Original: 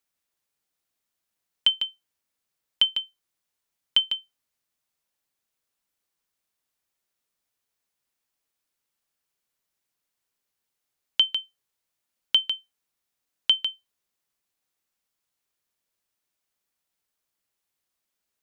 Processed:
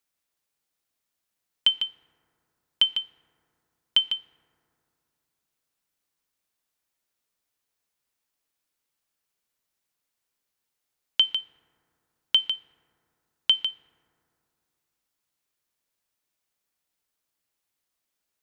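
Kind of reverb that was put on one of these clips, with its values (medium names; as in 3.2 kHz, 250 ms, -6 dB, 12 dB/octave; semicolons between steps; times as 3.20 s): FDN reverb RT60 2.7 s, low-frequency decay 1.2×, high-frequency decay 0.3×, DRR 14.5 dB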